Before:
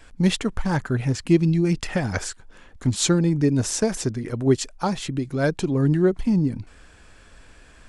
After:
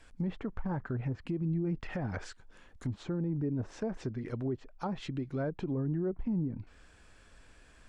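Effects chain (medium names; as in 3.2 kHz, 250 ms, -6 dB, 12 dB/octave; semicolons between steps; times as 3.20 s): low-pass that closes with the level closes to 1.1 kHz, closed at -18.5 dBFS; peak limiter -17 dBFS, peak gain reduction 10.5 dB; trim -9 dB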